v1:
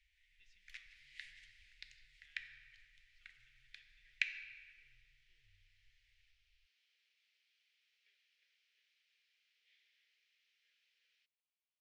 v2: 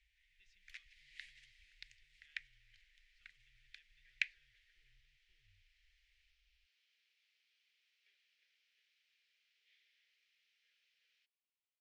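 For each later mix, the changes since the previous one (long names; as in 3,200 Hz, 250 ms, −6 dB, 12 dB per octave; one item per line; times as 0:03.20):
reverb: off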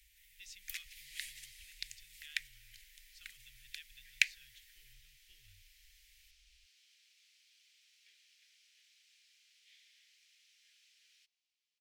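speech +8.0 dB
master: remove head-to-tape spacing loss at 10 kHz 31 dB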